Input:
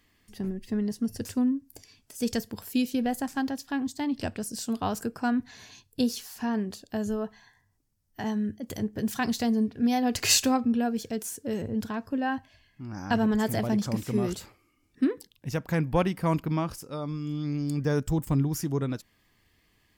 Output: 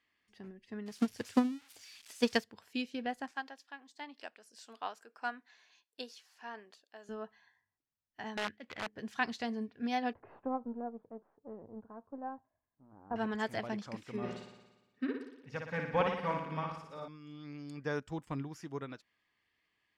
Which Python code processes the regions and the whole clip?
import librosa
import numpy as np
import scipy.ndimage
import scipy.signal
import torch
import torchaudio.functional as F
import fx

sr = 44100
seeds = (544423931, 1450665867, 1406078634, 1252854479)

y = fx.chain(x, sr, fx.crossing_spikes(level_db=-29.0),
    fx.transient(attack_db=11, sustain_db=2), at=(0.86, 2.44))
y = fx.chain(y, sr, fx.highpass(hz=430.0, slope=12),
    fx.high_shelf(hz=11000.0, db=6.5),
    fx.tremolo_shape(shape='triangle', hz=1.6, depth_pct=50), at=(3.31, 7.09))
y = fx.chain(y, sr, fx.median_filter(points=15),
    fx.peak_eq(hz=2500.0, db=14.0, octaves=2.3),
    fx.overflow_wrap(gain_db=23.5), at=(8.37, 8.88))
y = fx.chain(y, sr, fx.halfwave_gain(db=-7.0),
    fx.lowpass(hz=1000.0, slope=24),
    fx.hum_notches(base_hz=60, count=3), at=(10.13, 13.16))
y = fx.chain(y, sr, fx.high_shelf(hz=6200.0, db=-9.0),
    fx.notch_comb(f0_hz=340.0),
    fx.room_flutter(wall_m=10.0, rt60_s=1.1), at=(14.16, 17.08))
y = scipy.signal.sosfilt(scipy.signal.butter(2, 2300.0, 'lowpass', fs=sr, output='sos'), y)
y = fx.tilt_eq(y, sr, slope=4.0)
y = fx.upward_expand(y, sr, threshold_db=-43.0, expansion=1.5)